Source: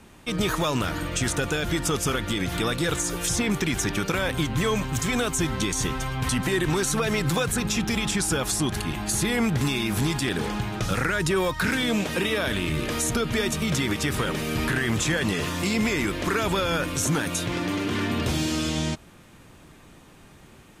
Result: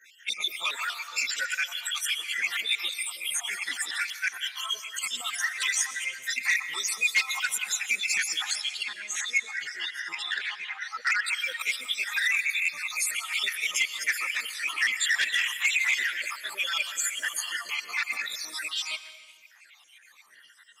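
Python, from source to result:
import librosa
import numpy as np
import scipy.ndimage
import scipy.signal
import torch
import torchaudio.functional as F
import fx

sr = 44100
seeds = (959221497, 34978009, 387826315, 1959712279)

y = fx.spec_dropout(x, sr, seeds[0], share_pct=72)
y = fx.lowpass(y, sr, hz=fx.line((8.42, 6500.0), (11.21, 3200.0)), slope=12, at=(8.42, 11.21), fade=0.02)
y = fx.chorus_voices(y, sr, voices=4, hz=0.51, base_ms=14, depth_ms=2.9, mix_pct=70)
y = fx.highpass_res(y, sr, hz=2000.0, q=2.4)
y = np.clip(y, -10.0 ** (-20.5 / 20.0), 10.0 ** (-20.5 / 20.0))
y = fx.rev_plate(y, sr, seeds[1], rt60_s=1.4, hf_ratio=0.9, predelay_ms=105, drr_db=12.5)
y = fx.transformer_sat(y, sr, knee_hz=2900.0)
y = y * librosa.db_to_amplitude(6.0)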